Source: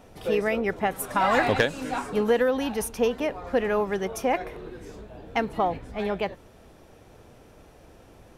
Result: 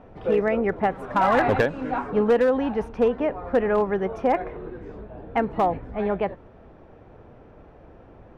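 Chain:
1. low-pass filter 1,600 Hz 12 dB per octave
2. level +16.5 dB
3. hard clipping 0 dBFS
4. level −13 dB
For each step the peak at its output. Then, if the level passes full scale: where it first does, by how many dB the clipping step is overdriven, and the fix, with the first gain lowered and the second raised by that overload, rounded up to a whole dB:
−9.5, +7.0, 0.0, −13.0 dBFS
step 2, 7.0 dB
step 2 +9.5 dB, step 4 −6 dB

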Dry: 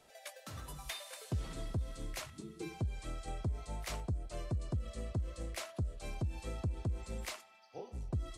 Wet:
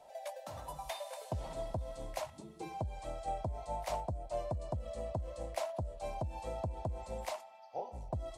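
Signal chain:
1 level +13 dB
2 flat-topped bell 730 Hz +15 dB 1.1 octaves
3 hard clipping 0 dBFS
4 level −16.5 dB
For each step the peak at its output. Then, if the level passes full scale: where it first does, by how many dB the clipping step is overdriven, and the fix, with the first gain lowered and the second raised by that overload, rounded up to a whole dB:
−13.0, −6.0, −6.0, −22.5 dBFS
no step passes full scale

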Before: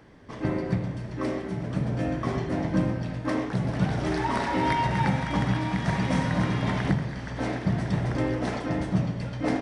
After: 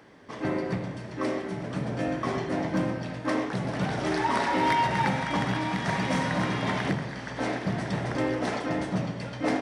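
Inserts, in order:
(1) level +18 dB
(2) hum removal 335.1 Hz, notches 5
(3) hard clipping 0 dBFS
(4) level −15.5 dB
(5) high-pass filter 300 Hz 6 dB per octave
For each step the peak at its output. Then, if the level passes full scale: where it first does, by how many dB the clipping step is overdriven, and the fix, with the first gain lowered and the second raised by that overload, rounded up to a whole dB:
+6.0, +6.0, 0.0, −15.5, −13.0 dBFS
step 1, 6.0 dB
step 1 +12 dB, step 4 −9.5 dB

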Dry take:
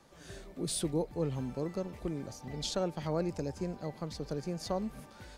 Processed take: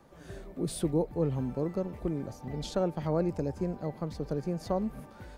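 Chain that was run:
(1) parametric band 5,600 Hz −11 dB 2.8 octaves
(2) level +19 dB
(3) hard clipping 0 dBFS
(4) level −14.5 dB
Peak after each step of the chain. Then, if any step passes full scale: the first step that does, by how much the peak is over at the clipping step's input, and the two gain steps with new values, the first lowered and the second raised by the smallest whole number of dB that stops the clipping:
−21.0, −2.0, −2.0, −16.5 dBFS
no step passes full scale

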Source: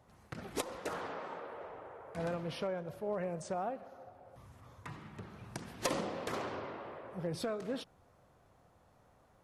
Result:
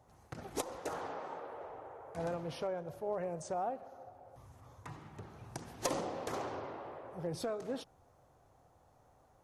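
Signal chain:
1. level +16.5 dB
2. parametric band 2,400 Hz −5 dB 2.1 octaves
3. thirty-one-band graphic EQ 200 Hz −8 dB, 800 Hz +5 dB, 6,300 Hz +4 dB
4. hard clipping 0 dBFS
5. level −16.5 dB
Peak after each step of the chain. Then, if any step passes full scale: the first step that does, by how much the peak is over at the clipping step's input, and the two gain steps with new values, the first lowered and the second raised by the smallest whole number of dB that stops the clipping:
−6.5, −6.0, −4.5, −4.5, −21.0 dBFS
no step passes full scale

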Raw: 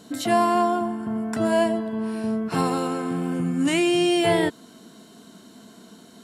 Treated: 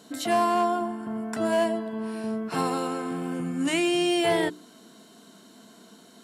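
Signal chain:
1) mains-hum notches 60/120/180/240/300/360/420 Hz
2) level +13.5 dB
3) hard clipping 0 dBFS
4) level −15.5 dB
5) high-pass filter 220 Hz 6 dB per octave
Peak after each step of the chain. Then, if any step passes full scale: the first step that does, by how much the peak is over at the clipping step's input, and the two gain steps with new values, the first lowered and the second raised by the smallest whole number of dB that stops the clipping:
−9.0, +4.5, 0.0, −15.5, −13.0 dBFS
step 2, 4.5 dB
step 2 +8.5 dB, step 4 −10.5 dB

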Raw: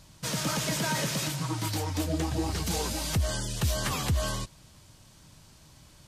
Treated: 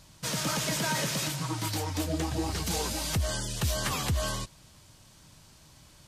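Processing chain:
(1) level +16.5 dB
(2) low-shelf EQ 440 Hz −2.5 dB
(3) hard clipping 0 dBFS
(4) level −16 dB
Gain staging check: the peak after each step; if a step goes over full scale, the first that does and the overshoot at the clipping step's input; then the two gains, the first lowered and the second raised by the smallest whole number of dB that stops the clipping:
−2.0, −2.5, −2.5, −18.5 dBFS
no step passes full scale

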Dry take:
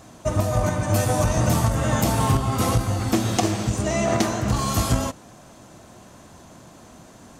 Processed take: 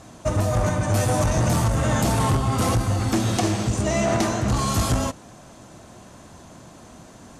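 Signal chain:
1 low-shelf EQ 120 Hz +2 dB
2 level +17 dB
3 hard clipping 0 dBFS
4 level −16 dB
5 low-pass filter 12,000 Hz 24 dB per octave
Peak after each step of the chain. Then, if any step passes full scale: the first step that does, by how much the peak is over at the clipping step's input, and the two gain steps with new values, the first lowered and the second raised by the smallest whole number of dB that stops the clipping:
−7.5, +9.5, 0.0, −16.0, −14.0 dBFS
step 2, 9.5 dB
step 2 +7 dB, step 4 −6 dB

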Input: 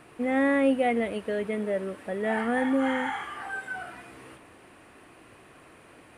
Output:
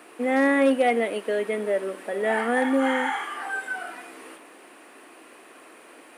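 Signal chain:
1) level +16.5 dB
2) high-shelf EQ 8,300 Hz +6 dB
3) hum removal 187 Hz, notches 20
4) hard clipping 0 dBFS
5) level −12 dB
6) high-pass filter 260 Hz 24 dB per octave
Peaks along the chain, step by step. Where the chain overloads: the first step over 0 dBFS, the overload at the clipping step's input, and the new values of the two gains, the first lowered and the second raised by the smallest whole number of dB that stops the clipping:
+3.5, +3.5, +4.0, 0.0, −12.0, −10.0 dBFS
step 1, 4.0 dB
step 1 +12.5 dB, step 5 −8 dB

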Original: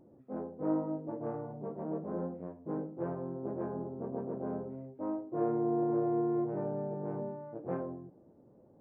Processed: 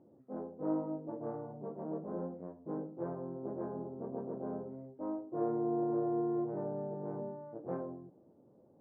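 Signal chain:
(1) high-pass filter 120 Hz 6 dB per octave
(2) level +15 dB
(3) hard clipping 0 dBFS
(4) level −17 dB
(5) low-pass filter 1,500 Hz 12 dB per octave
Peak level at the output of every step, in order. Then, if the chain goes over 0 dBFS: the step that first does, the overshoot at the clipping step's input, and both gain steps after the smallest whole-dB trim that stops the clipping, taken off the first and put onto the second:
−20.0, −5.0, −5.0, −22.0, −22.0 dBFS
no step passes full scale

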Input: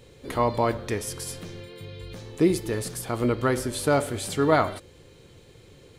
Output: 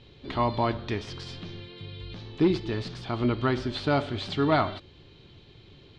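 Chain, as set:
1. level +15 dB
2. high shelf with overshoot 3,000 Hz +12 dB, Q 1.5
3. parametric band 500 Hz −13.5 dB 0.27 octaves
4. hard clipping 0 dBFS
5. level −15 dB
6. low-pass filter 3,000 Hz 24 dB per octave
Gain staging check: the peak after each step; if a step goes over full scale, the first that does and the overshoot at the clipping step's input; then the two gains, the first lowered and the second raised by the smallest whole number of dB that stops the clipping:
+8.0, +9.0, +8.0, 0.0, −15.0, −13.5 dBFS
step 1, 8.0 dB
step 1 +7 dB, step 5 −7 dB

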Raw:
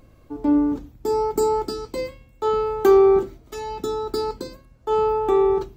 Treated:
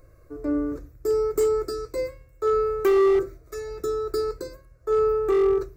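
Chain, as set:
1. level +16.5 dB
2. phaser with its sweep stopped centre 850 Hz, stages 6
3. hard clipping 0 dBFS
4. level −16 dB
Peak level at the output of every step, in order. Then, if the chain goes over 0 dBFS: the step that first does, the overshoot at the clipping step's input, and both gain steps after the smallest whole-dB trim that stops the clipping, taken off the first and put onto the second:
+10.5, +9.0, 0.0, −16.0 dBFS
step 1, 9.0 dB
step 1 +7.5 dB, step 4 −7 dB

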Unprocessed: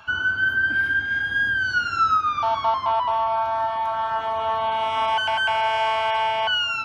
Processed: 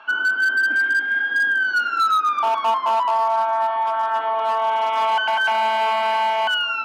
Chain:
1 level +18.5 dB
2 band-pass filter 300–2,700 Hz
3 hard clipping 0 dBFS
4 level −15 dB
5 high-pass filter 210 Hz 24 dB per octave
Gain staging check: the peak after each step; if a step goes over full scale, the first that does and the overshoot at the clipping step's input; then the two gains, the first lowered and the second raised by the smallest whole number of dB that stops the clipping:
+7.0, +7.0, 0.0, −15.0, −11.0 dBFS
step 1, 7.0 dB
step 1 +11.5 dB, step 4 −8 dB

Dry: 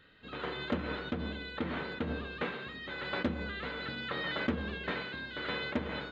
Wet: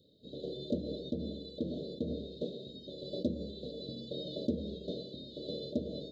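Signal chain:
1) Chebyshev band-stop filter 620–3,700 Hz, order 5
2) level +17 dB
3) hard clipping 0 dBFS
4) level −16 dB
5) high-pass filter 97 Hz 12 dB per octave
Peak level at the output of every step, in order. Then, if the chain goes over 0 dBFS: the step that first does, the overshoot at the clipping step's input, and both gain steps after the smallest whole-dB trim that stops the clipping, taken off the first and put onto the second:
−20.5, −3.5, −3.5, −19.5, −20.0 dBFS
no step passes full scale

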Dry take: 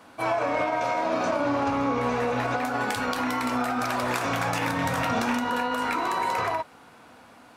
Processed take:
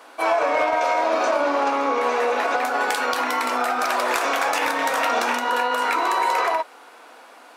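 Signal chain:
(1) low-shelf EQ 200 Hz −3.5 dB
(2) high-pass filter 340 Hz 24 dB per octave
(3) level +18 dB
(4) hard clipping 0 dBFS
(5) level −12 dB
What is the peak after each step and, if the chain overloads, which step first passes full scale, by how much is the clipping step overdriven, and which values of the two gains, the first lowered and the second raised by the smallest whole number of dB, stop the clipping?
−14.0, −12.0, +6.0, 0.0, −12.0 dBFS
step 3, 6.0 dB
step 3 +12 dB, step 5 −6 dB

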